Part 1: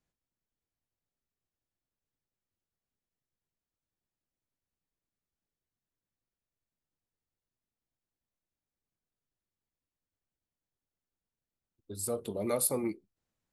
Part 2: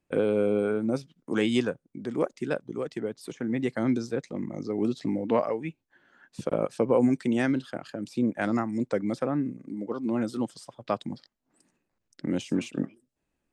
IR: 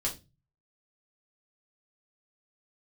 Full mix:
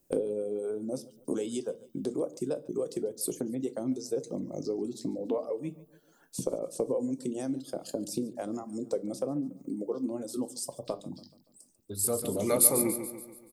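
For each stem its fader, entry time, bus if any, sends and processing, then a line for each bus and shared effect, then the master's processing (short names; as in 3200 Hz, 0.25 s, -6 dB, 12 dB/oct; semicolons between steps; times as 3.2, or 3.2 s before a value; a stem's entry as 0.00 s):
+3.0 dB, 0.00 s, no send, echo send -9 dB, dry
+0.5 dB, 0.00 s, send -11.5 dB, echo send -19.5 dB, compressor 5:1, threshold -36 dBFS, peak gain reduction 16 dB; reverb removal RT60 1.2 s; EQ curve 110 Hz 0 dB, 250 Hz +4 dB, 500 Hz +7 dB, 1100 Hz -4 dB, 1800 Hz -15 dB, 5700 Hz +7 dB, 12000 Hz +13 dB; auto duck -11 dB, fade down 1.30 s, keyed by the first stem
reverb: on, RT60 0.25 s, pre-delay 3 ms
echo: feedback echo 0.143 s, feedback 49%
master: high shelf 10000 Hz +11.5 dB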